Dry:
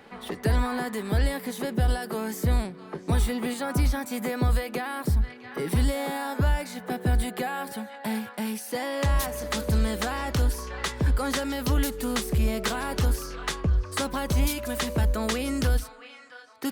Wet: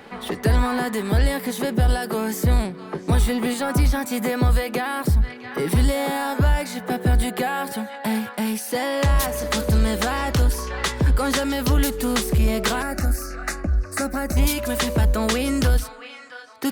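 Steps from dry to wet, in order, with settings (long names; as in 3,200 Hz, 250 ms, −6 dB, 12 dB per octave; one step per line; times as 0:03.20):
in parallel at −5.5 dB: soft clipping −27.5 dBFS, distortion −8 dB
0:12.82–0:14.37: on the sum: phaser with its sweep stopped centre 660 Hz, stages 8
level +3.5 dB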